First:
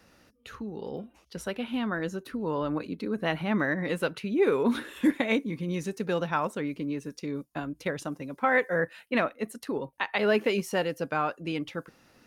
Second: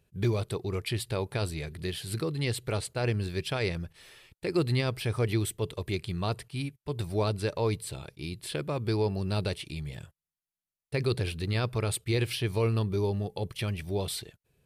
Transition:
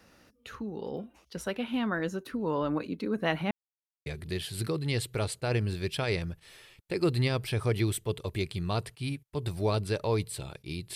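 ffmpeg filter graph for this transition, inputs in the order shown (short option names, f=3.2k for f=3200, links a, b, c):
-filter_complex "[0:a]apad=whole_dur=10.95,atrim=end=10.95,asplit=2[a][b];[a]atrim=end=3.51,asetpts=PTS-STARTPTS,afade=t=out:st=3.506:d=0.004:c=hsin[c];[b]atrim=start=3.51:end=4.06,asetpts=PTS-STARTPTS,volume=0[d];[1:a]atrim=start=1.59:end=8.48,asetpts=PTS-STARTPTS,afade=t=in:d=0.004:c=hsin[e];[c][d][e]concat=n=3:v=0:a=1"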